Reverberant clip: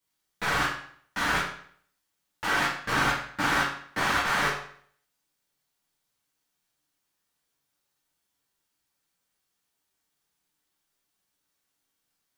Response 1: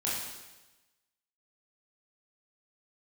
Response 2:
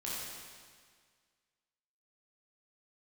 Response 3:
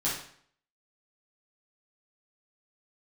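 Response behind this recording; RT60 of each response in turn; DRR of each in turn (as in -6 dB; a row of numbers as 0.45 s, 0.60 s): 3; 1.1 s, 1.8 s, 0.60 s; -7.0 dB, -7.5 dB, -8.5 dB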